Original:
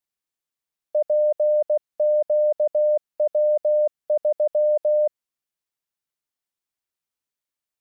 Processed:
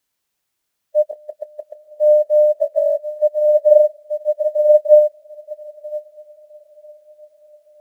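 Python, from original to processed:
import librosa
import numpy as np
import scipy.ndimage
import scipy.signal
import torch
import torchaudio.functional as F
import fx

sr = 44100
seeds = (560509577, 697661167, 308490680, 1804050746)

y = fx.sine_speech(x, sr, at=(2.53, 3.22))
y = fx.steep_highpass(y, sr, hz=380.0, slope=36, at=(4.43, 4.87), fade=0.02)
y = fx.hpss(y, sr, part='percussive', gain_db=-14)
y = fx.peak_eq(y, sr, hz=630.0, db=4.5, octaves=0.24)
y = fx.level_steps(y, sr, step_db=15, at=(1.11, 1.87))
y = fx.quant_dither(y, sr, seeds[0], bits=10, dither='triangular')
y = fx.doubler(y, sr, ms=28.0, db=-11.5)
y = fx.echo_diffused(y, sr, ms=967, feedback_pct=59, wet_db=-8)
y = fx.upward_expand(y, sr, threshold_db=-26.0, expansion=2.5)
y = F.gain(torch.from_numpy(y), 6.5).numpy()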